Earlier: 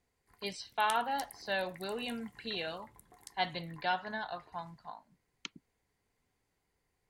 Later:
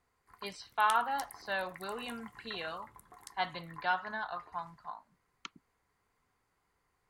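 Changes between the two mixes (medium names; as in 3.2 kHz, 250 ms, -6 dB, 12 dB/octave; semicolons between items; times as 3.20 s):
speech -4.5 dB; master: add peaking EQ 1.2 kHz +12.5 dB 0.8 oct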